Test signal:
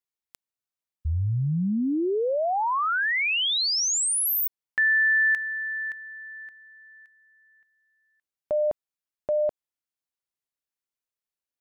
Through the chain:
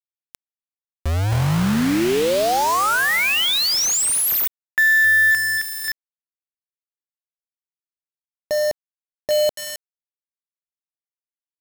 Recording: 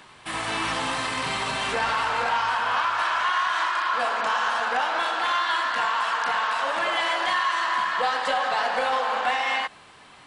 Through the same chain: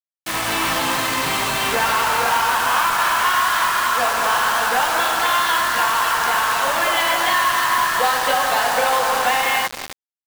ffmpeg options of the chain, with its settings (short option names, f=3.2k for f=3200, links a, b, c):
-filter_complex "[0:a]asplit=2[a][b];[b]adelay=266,lowpass=f=1.9k:p=1,volume=-9.5dB,asplit=2[c][d];[d]adelay=266,lowpass=f=1.9k:p=1,volume=0.41,asplit=2[e][f];[f]adelay=266,lowpass=f=1.9k:p=1,volume=0.41,asplit=2[g][h];[h]adelay=266,lowpass=f=1.9k:p=1,volume=0.41[i];[a][c][e][g][i]amix=inputs=5:normalize=0,acrusher=bits=4:mix=0:aa=0.000001,volume=5.5dB"